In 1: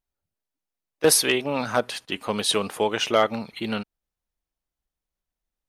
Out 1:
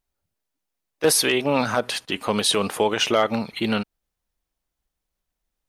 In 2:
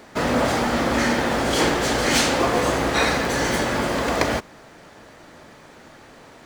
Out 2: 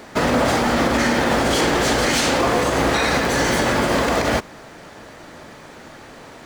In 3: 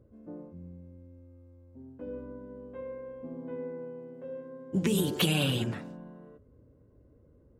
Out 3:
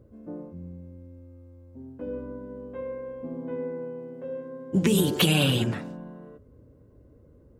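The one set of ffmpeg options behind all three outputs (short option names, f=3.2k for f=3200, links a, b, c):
-af "alimiter=limit=-14.5dB:level=0:latency=1:release=65,volume=5.5dB"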